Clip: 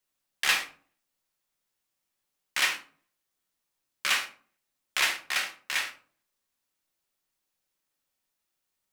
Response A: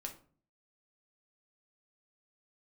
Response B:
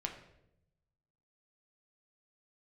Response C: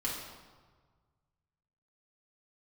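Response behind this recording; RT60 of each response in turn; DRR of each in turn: A; 0.45, 0.80, 1.5 seconds; 2.5, 2.0, −6.0 decibels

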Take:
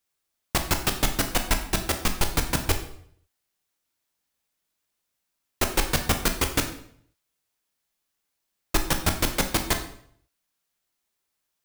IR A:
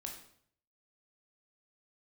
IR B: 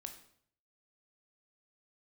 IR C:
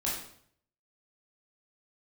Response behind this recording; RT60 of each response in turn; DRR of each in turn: B; 0.60, 0.60, 0.60 seconds; 1.0, 5.5, −6.0 decibels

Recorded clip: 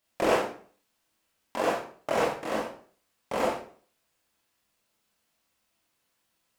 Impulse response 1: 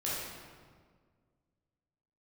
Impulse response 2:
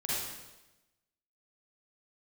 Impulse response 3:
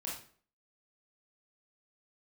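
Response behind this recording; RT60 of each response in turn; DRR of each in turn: 3; 1.7, 1.0, 0.50 seconds; −8.5, −8.5, −5.0 decibels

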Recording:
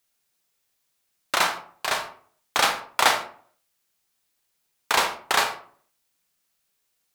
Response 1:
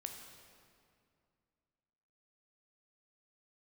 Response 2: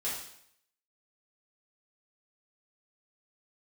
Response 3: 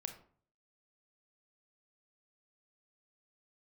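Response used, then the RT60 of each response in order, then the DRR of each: 3; 2.3, 0.70, 0.50 seconds; 3.5, −9.0, 6.0 decibels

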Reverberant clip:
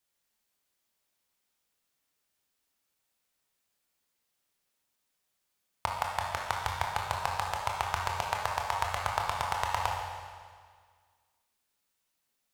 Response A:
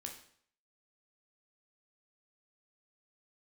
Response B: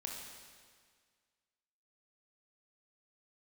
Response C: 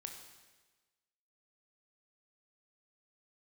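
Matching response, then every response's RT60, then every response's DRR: B; 0.60, 1.8, 1.3 seconds; 1.5, −1.0, 3.5 decibels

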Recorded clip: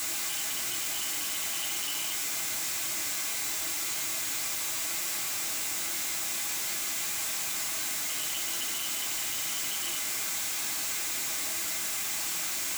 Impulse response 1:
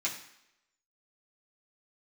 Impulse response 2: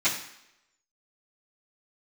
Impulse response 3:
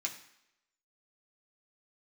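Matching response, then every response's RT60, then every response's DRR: 3; 0.80, 0.80, 0.80 seconds; −6.5, −16.5, −1.0 decibels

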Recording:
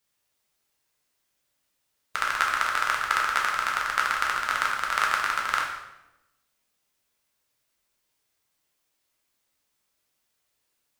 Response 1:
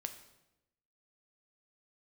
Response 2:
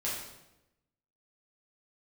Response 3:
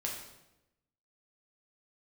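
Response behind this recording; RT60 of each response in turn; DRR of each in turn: 3; 0.95, 0.95, 0.95 seconds; 7.0, −7.5, −2.0 decibels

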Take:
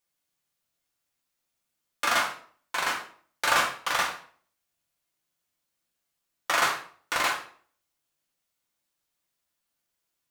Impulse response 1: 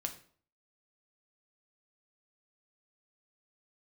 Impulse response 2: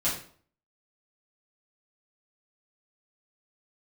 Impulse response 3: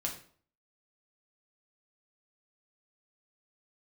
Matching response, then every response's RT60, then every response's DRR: 3; 0.50, 0.50, 0.50 seconds; 4.5, −10.0, −0.5 decibels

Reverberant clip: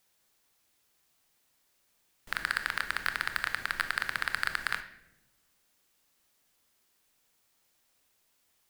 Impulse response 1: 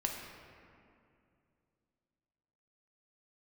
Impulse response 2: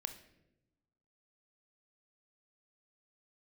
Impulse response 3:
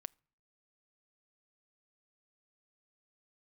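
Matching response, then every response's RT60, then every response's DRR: 2; 2.5, 0.95, 0.55 seconds; 0.0, 8.5, 26.0 decibels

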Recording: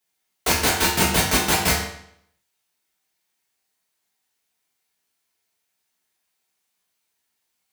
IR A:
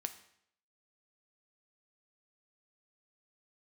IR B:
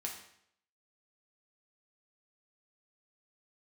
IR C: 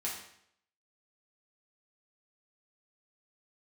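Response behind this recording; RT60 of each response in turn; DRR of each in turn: C; 0.70, 0.70, 0.70 seconds; 8.0, −1.0, −5.5 decibels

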